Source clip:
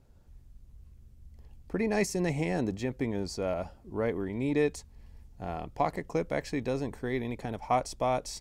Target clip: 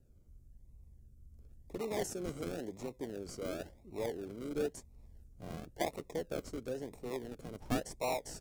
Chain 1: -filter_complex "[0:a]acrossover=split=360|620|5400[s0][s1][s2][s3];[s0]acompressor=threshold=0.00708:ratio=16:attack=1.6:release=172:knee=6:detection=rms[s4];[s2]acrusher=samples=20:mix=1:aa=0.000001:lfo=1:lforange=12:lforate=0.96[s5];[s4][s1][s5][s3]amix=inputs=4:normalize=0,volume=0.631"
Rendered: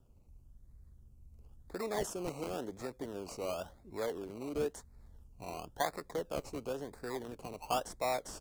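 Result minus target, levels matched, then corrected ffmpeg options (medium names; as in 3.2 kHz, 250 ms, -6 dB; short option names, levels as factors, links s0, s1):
decimation with a swept rate: distortion -25 dB
-filter_complex "[0:a]acrossover=split=360|620|5400[s0][s1][s2][s3];[s0]acompressor=threshold=0.00708:ratio=16:attack=1.6:release=172:knee=6:detection=rms[s4];[s2]acrusher=samples=39:mix=1:aa=0.000001:lfo=1:lforange=23.4:lforate=0.96[s5];[s4][s1][s5][s3]amix=inputs=4:normalize=0,volume=0.631"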